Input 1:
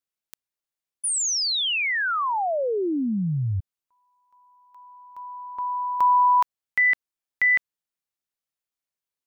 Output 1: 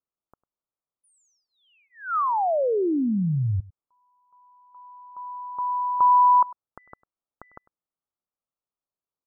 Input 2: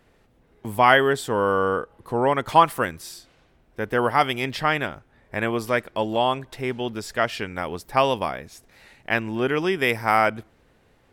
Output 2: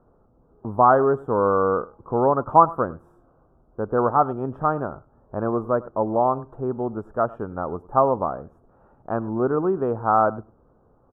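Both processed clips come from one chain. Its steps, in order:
elliptic low-pass filter 1,300 Hz, stop band 40 dB
on a send: single-tap delay 100 ms −21 dB
on the sum: level +2 dB

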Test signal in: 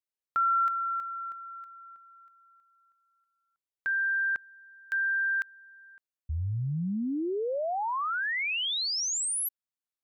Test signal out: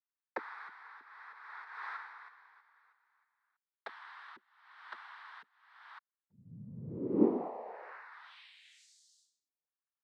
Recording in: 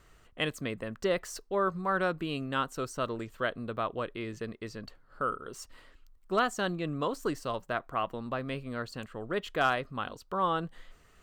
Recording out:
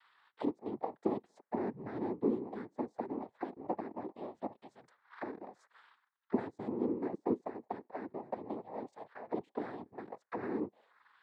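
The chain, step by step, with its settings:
envelope filter 320–1,700 Hz, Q 8.3, down, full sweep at −30 dBFS
cochlear-implant simulation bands 6
level +7 dB

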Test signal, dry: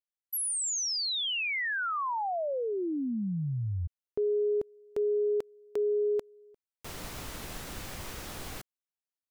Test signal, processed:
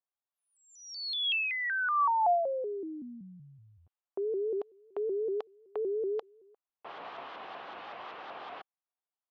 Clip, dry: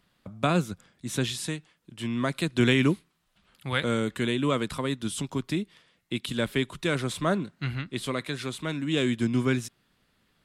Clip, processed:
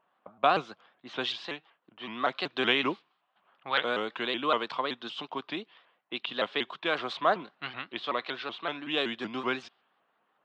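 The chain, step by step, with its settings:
low-pass that shuts in the quiet parts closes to 1,500 Hz, open at −22.5 dBFS
loudspeaker in its box 490–4,300 Hz, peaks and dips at 750 Hz +8 dB, 1,100 Hz +6 dB, 2,100 Hz −3 dB, 3,000 Hz +4 dB
pitch modulation by a square or saw wave saw up 5.3 Hz, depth 160 cents

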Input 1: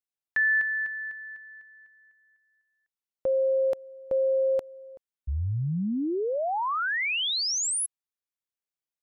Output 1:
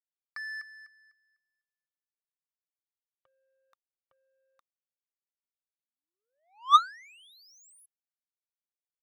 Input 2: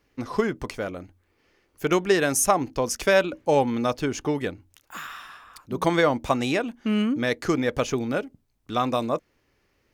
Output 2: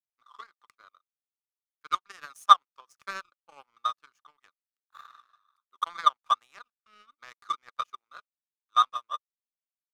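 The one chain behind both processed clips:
high-pass with resonance 1,200 Hz, resonance Q 15
power curve on the samples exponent 2
level −6.5 dB

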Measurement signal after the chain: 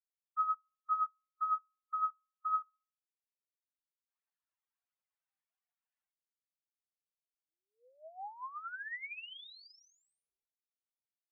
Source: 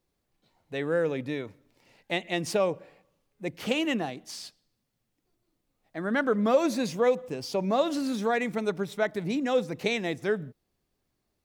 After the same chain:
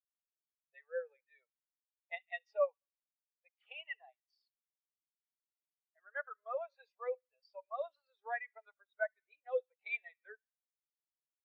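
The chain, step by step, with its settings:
high-pass filter 580 Hz 24 dB per octave
first difference
phase shifter 1.4 Hz, delay 2.7 ms, feedback 36%
head-to-tape spacing loss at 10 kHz 38 dB
delay with a high-pass on its return 70 ms, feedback 66%, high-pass 1,500 Hz, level −16 dB
every bin expanded away from the loudest bin 2.5 to 1
level +9.5 dB

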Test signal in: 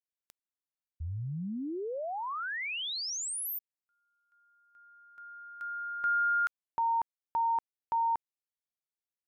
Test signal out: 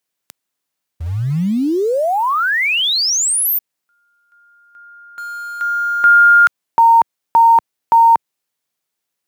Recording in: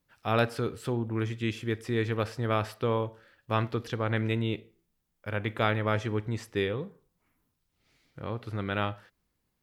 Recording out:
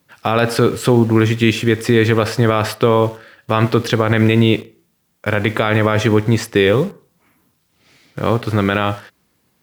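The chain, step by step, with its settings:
high-pass filter 110 Hz 12 dB per octave
in parallel at −9 dB: bit-depth reduction 8 bits, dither none
on the sum: boost into a limiter +18 dB
level −1 dB

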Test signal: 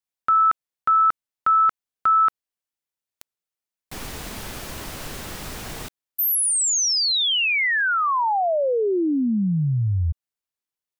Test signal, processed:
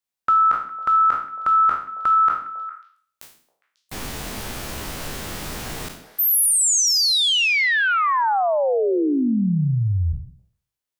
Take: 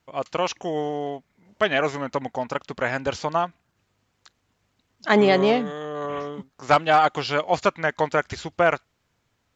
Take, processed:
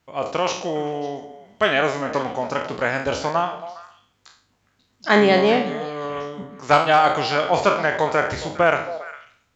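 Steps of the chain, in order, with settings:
peak hold with a decay on every bin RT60 0.50 s
echo through a band-pass that steps 136 ms, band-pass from 230 Hz, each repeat 1.4 octaves, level −8.5 dB
level +1 dB

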